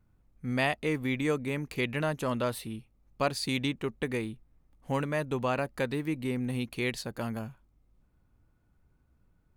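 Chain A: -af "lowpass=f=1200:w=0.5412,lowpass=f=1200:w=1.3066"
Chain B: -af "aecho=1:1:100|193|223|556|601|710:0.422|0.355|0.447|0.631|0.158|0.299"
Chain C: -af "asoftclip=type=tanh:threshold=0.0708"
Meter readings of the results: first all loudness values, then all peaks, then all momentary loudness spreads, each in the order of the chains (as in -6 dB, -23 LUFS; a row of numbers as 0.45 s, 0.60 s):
-33.5 LUFS, -29.5 LUFS, -33.5 LUFS; -17.0 dBFS, -13.0 dBFS, -23.0 dBFS; 10 LU, 9 LU, 9 LU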